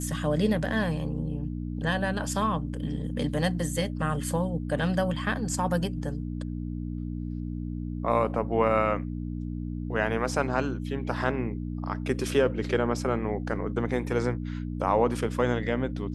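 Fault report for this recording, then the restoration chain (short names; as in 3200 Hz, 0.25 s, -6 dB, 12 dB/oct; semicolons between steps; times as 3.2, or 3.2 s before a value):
hum 60 Hz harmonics 5 -33 dBFS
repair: de-hum 60 Hz, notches 5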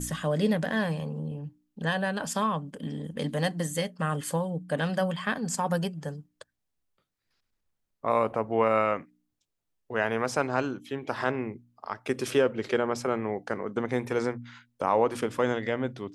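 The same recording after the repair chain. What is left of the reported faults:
none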